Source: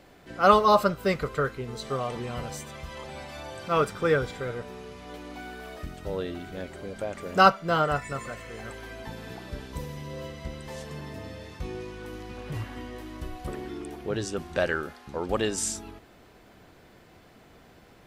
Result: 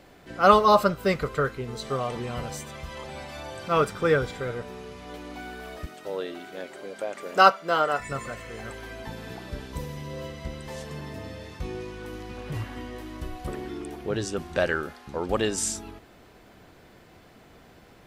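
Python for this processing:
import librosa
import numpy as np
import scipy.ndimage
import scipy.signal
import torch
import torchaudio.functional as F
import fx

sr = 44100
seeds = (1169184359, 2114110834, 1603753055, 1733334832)

y = fx.highpass(x, sr, hz=330.0, slope=12, at=(5.86, 8.0))
y = y * librosa.db_to_amplitude(1.5)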